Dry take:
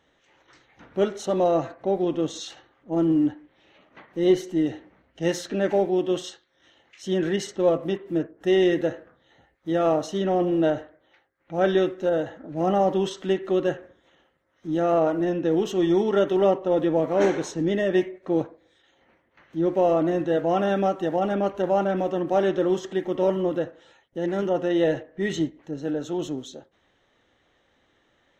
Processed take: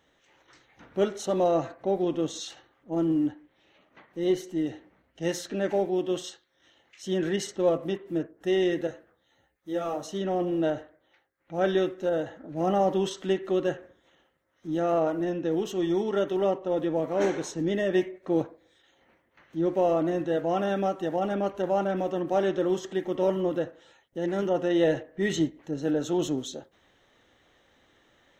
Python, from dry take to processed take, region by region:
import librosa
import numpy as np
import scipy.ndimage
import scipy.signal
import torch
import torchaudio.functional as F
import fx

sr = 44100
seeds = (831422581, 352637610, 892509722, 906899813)

y = fx.chain(x, sr, fx.high_shelf(hz=7100.0, db=9.5),
    fx.ensemble(), at=(8.87, 10.06))
y = fx.rider(y, sr, range_db=10, speed_s=2.0)
y = fx.high_shelf(y, sr, hz=7400.0, db=7.0)
y = F.gain(torch.from_numpy(y), -3.5).numpy()